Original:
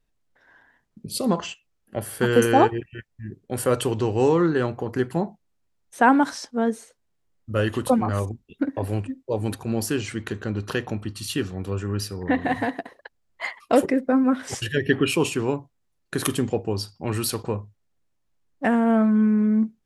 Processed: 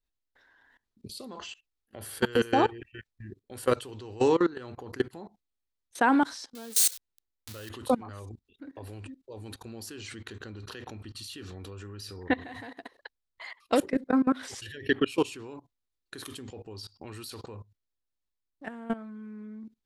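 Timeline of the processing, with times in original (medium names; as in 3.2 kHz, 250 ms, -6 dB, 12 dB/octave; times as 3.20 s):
6.55–7.69 s: zero-crossing glitches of -16.5 dBFS
whole clip: fifteen-band graphic EQ 160 Hz -11 dB, 630 Hz -4 dB, 4 kHz +7 dB; level held to a coarse grid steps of 21 dB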